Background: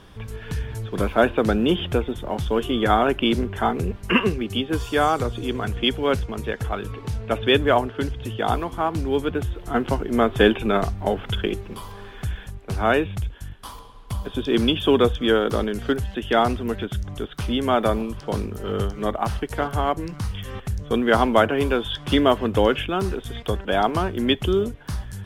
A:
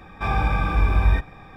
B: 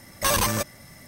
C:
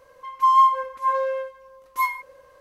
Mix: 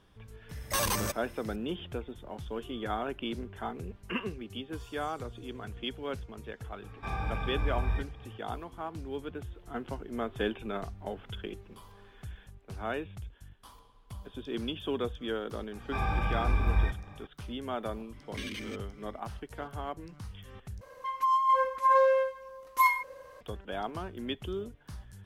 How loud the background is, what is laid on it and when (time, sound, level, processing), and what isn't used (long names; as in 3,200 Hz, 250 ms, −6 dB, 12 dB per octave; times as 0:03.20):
background −15.5 dB
0:00.49: mix in B −7.5 dB
0:06.82: mix in A −12.5 dB
0:15.71: mix in A −8.5 dB
0:18.13: mix in B + formant filter i
0:20.81: overwrite with C −1.5 dB + compressor whose output falls as the input rises −21 dBFS